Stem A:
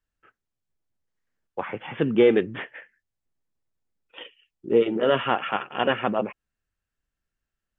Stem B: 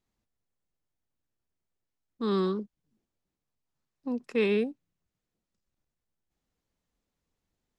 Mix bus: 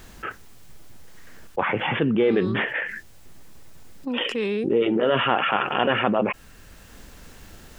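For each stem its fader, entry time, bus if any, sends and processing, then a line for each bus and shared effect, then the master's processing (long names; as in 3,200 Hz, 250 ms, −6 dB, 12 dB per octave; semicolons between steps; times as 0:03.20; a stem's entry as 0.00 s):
−4.0 dB, 0.00 s, no send, no processing
−5.0 dB, 0.00 s, no send, automatic ducking −11 dB, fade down 1.80 s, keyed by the first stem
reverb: not used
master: envelope flattener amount 70%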